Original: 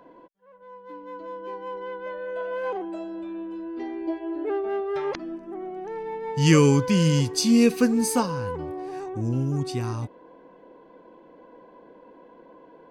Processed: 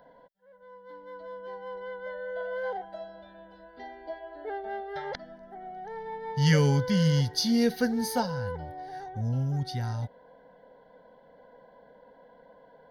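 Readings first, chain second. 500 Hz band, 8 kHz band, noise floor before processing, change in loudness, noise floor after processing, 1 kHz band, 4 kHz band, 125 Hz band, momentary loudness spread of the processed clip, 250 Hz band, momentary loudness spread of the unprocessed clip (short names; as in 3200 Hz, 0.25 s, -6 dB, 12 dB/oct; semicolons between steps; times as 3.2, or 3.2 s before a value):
-6.5 dB, -9.0 dB, -52 dBFS, -4.5 dB, -57 dBFS, -3.5 dB, -2.5 dB, -2.0 dB, 20 LU, -7.0 dB, 17 LU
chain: fixed phaser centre 1700 Hz, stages 8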